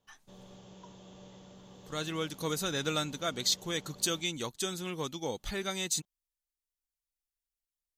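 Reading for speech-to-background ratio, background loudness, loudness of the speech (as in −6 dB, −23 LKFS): 20.0 dB, −53.5 LKFS, −33.5 LKFS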